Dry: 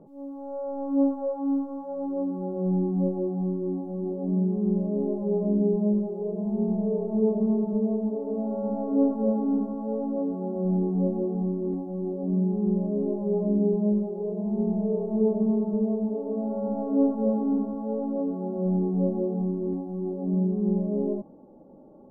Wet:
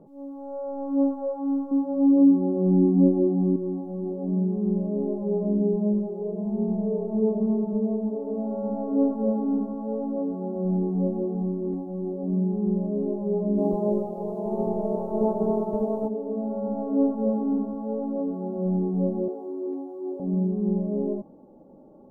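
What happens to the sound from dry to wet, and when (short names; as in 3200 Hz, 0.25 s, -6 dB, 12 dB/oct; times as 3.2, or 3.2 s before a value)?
1.71–3.56 bell 280 Hz +14 dB 0.69 oct
13.57–16.07 spectral limiter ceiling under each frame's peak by 19 dB
19.28–20.2 steep high-pass 260 Hz 72 dB/oct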